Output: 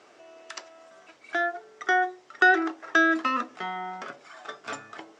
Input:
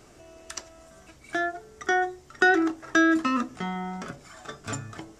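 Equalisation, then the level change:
band-pass filter 460–4,200 Hz
+2.0 dB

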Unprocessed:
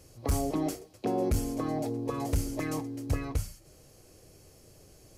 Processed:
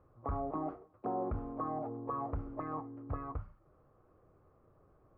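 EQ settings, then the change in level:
dynamic equaliser 750 Hz, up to +5 dB, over −48 dBFS, Q 2.8
transistor ladder low-pass 1,300 Hz, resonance 70%
+1.5 dB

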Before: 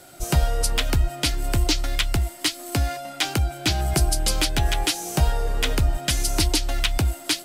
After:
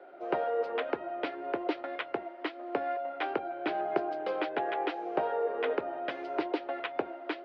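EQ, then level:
four-pole ladder high-pass 370 Hz, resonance 45%
low-pass filter 1,900 Hz 12 dB per octave
high-frequency loss of the air 350 metres
+6.5 dB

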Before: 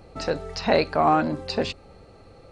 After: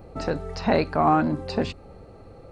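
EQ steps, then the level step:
dynamic equaliser 530 Hz, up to −6 dB, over −35 dBFS, Q 1.4
parametric band 4,600 Hz −10 dB 2.9 octaves
+4.0 dB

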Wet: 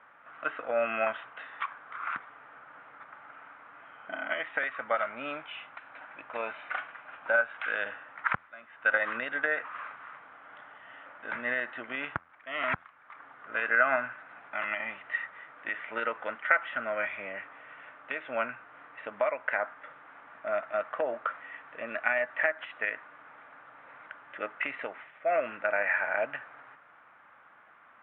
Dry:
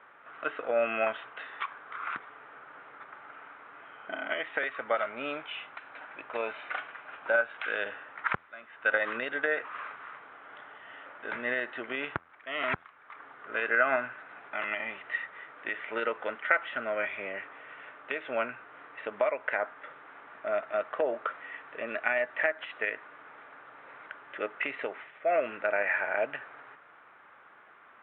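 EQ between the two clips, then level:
dynamic equaliser 1,500 Hz, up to +3 dB, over −37 dBFS, Q 0.79
high-frequency loss of the air 190 metres
parametric band 400 Hz −9.5 dB 0.45 octaves
0.0 dB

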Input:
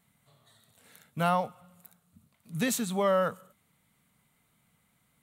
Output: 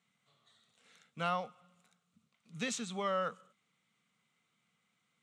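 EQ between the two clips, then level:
loudspeaker in its box 270–6,700 Hz, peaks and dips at 280 Hz −8 dB, 410 Hz −5 dB, 620 Hz −10 dB, 910 Hz −9 dB, 1,700 Hz −6 dB, 4,400 Hz −4 dB
−2.0 dB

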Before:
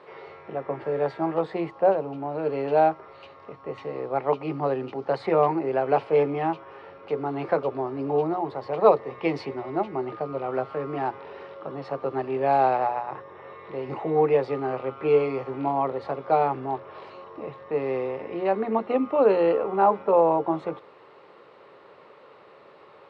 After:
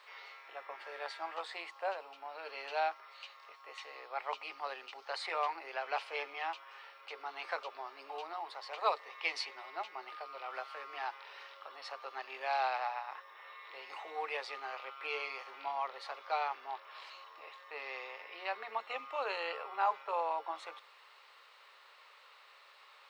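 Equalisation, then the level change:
high-pass filter 780 Hz 12 dB per octave
first difference
+9.5 dB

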